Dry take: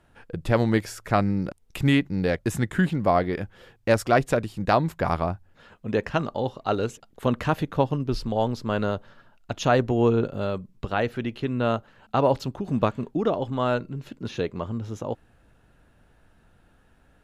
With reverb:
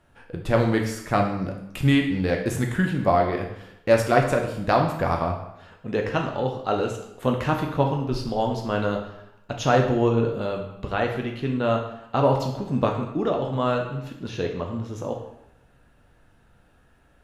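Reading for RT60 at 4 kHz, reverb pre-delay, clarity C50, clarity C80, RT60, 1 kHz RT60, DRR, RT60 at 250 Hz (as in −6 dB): 0.70 s, 9 ms, 6.5 dB, 9.0 dB, 0.85 s, 0.85 s, 1.5 dB, 0.80 s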